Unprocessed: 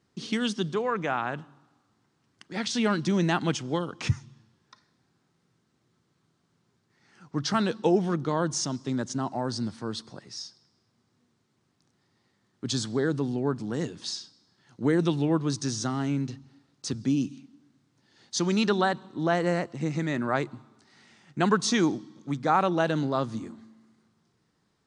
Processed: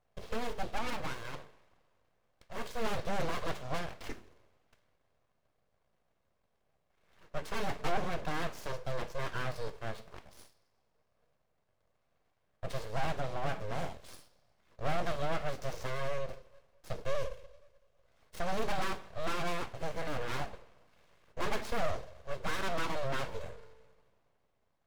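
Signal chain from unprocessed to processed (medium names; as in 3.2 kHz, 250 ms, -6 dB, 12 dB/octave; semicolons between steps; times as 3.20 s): median filter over 41 samples; high-pass 47 Hz; resonant low shelf 150 Hz -8 dB, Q 1.5; hum notches 50/100/150/200/250 Hz; comb of notches 540 Hz; two-slope reverb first 0.35 s, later 2.7 s, from -28 dB, DRR 8 dB; overdrive pedal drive 19 dB, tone 7.4 kHz, clips at -12.5 dBFS; full-wave rectifier; trim -7 dB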